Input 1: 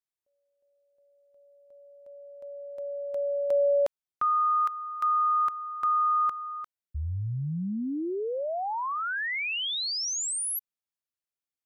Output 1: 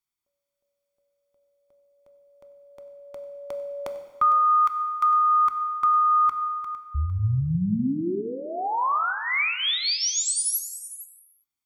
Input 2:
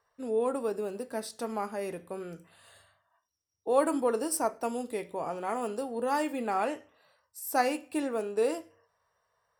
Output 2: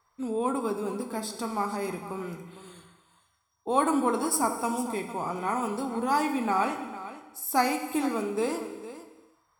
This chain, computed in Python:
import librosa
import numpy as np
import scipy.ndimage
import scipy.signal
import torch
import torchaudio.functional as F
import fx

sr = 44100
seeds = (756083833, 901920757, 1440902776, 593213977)

p1 = x + 0.63 * np.pad(x, (int(0.9 * sr / 1000.0), 0))[:len(x)]
p2 = p1 + fx.echo_single(p1, sr, ms=455, db=-14.0, dry=0)
p3 = fx.rev_gated(p2, sr, seeds[0], gate_ms=430, shape='falling', drr_db=7.0)
y = p3 * 10.0 ** (3.0 / 20.0)